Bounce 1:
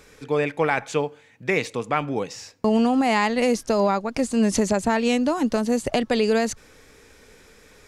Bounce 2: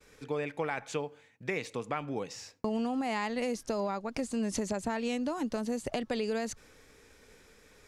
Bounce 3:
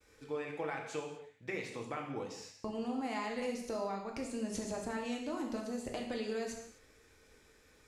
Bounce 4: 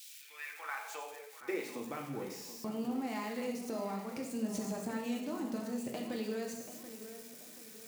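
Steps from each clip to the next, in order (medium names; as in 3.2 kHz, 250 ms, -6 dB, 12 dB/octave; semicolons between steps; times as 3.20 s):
compression 2.5:1, threshold -25 dBFS, peak gain reduction 6.5 dB; expander -49 dBFS; trim -6.5 dB
gated-style reverb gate 280 ms falling, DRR 0 dB; trim -8 dB
zero-crossing glitches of -41.5 dBFS; high-pass sweep 3.1 kHz -> 160 Hz, 0.07–2.06 s; tape echo 732 ms, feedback 45%, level -10.5 dB; trim -2.5 dB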